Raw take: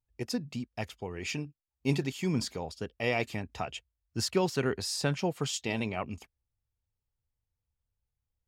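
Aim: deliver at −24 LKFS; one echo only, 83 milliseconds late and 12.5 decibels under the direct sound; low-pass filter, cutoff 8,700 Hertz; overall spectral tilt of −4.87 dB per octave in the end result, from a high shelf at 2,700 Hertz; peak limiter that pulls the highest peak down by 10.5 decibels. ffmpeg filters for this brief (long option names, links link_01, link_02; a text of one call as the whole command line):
ffmpeg -i in.wav -af "lowpass=8700,highshelf=frequency=2700:gain=-3.5,alimiter=limit=-24dB:level=0:latency=1,aecho=1:1:83:0.237,volume=12.5dB" out.wav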